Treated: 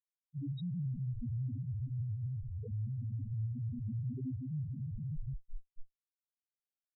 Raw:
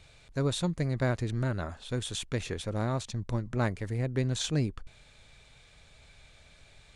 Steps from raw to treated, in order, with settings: backward echo that repeats 118 ms, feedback 68%, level -5 dB; Schmitt trigger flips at -42 dBFS; loudest bins only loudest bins 1; trim +2.5 dB

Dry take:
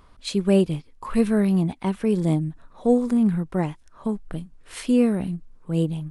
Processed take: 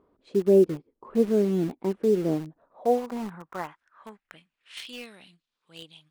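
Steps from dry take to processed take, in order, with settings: band-pass sweep 380 Hz -> 3.6 kHz, 2.10–4.96 s; in parallel at -10 dB: bit crusher 6-bit; on the sum: trim +2 dB

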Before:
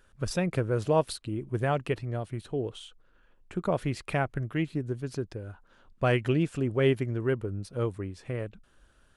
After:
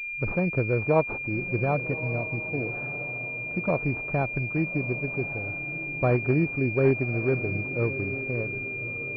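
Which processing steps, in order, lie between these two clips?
1.75–3.70 s: comb of notches 400 Hz; echo that smears into a reverb 1207 ms, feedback 41%, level -12 dB; class-D stage that switches slowly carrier 2.4 kHz; trim +2.5 dB

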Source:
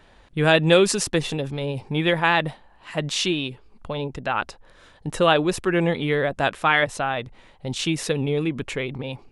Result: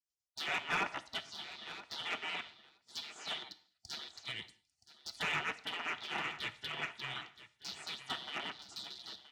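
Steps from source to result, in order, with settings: rattle on loud lows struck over -34 dBFS, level -9 dBFS; high-pass 320 Hz 12 dB/octave; low-pass that closes with the level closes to 980 Hz, closed at -15.5 dBFS; spectral gate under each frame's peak -25 dB weak; low-pass 6.4 kHz 12 dB/octave; harmonic-percussive split harmonic -4 dB; in parallel at -1 dB: peak limiter -30.5 dBFS, peak gain reduction 8 dB; on the sum: comb of notches 540 Hz; saturation -31 dBFS, distortion -14 dB; on a send: feedback delay 973 ms, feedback 16%, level -10 dB; on the sum: gated-style reverb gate 230 ms falling, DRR 11 dB; three bands expanded up and down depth 70%; trim +1 dB

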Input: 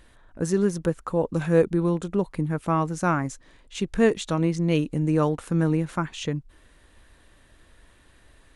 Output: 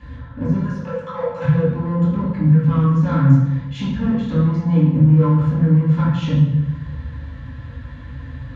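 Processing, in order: de-esser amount 85%; 0.57–1.42 s: steep high-pass 530 Hz 36 dB/octave; compression 2.5:1, threshold -39 dBFS, peak gain reduction 16.5 dB; hard clipper -33.5 dBFS, distortion -11 dB; distance through air 110 m; reverberation RT60 1.1 s, pre-delay 3 ms, DRR -12 dB; trim -5.5 dB

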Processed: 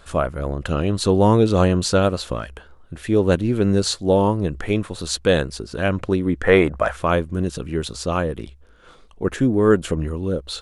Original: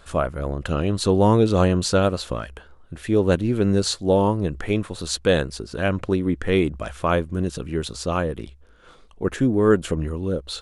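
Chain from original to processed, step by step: 6.43–6.96 s: high-order bell 990 Hz +11 dB 2.4 oct; trim +1.5 dB

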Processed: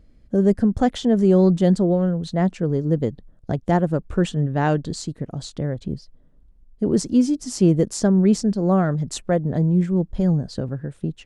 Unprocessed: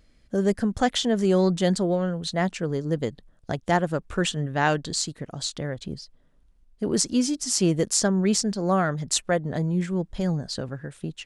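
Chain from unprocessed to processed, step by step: tilt shelf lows +7.5 dB, about 830 Hz

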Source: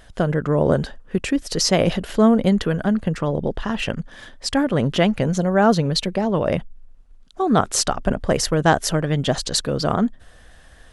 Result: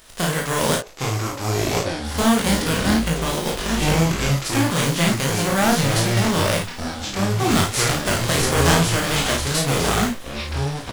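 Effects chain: formants flattened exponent 0.3; in parallel at -10 dB: integer overflow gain 10 dB; 0.75–2.05 s: on the sum: ladder band-pass 610 Hz, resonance 55%; ever faster or slower copies 729 ms, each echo -6 st, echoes 3; chorus 2.6 Hz, delay 18.5 ms, depth 5.8 ms; on a send: early reflections 36 ms -5 dB, 53 ms -7.5 dB; on the sum: trim -2 dB

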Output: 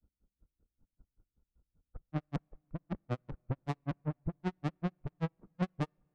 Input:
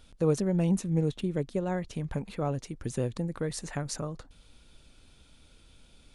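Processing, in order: reverse the whole clip; Chebyshev low-pass 1.4 kHz, order 5; tilt shelf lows +8.5 dB, about 650 Hz; valve stage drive 37 dB, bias 0.6; in parallel at -6 dB: bit crusher 4-bit; on the sum: granulator 100 ms, grains 5.2 per s; on a send at -17.5 dB: reverberation RT60 3.0 s, pre-delay 3 ms; on the sum: upward expansion 2.5:1, over -54 dBFS; trim +11 dB

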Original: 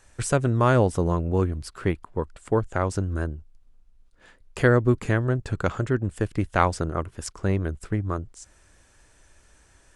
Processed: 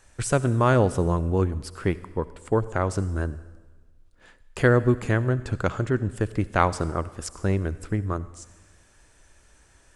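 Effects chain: on a send: treble shelf 6.9 kHz +7.5 dB + reverberation RT60 1.4 s, pre-delay 57 ms, DRR 16.5 dB

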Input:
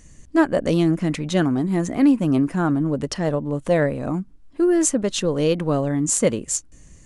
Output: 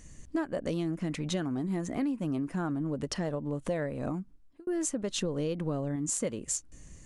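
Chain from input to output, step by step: 5.21–5.96 s: bass shelf 440 Hz +5 dB; compression 6:1, threshold -26 dBFS, peak gain reduction 14 dB; 4.07–4.67 s: fade out; trim -3 dB

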